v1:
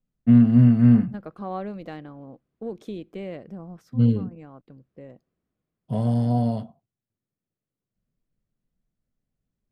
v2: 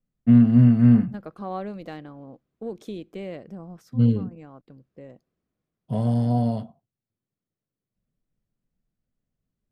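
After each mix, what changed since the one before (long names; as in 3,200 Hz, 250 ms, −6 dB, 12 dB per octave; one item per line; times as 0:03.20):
second voice: add bass and treble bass −1 dB, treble +5 dB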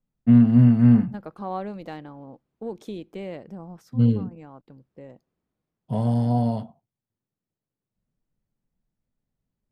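master: add parametric band 880 Hz +8 dB 0.24 octaves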